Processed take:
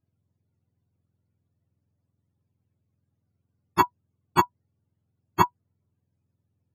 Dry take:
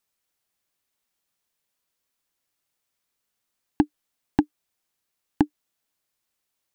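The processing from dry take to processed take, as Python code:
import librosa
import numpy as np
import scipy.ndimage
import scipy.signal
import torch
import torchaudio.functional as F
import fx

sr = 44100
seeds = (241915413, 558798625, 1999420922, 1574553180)

y = fx.octave_mirror(x, sr, pivot_hz=540.0)
y = F.gain(torch.from_numpy(y), 7.0).numpy()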